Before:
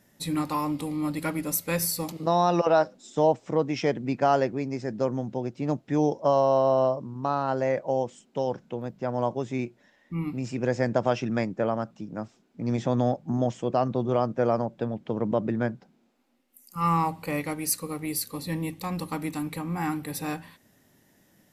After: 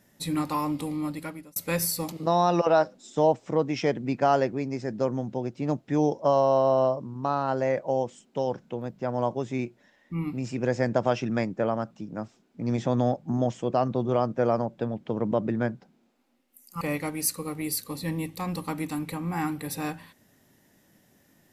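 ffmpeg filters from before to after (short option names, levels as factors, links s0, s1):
-filter_complex "[0:a]asplit=3[s0][s1][s2];[s0]atrim=end=1.56,asetpts=PTS-STARTPTS,afade=t=out:st=0.91:d=0.65[s3];[s1]atrim=start=1.56:end=16.812,asetpts=PTS-STARTPTS,afade=t=in:d=0.004:c=hsin[s4];[s2]atrim=start=17.248[s5];[s3][s4]concat=n=2:v=0:a=1[s6];[s6][s5]acrossfade=d=0.004:c1=hsin:c2=hsin"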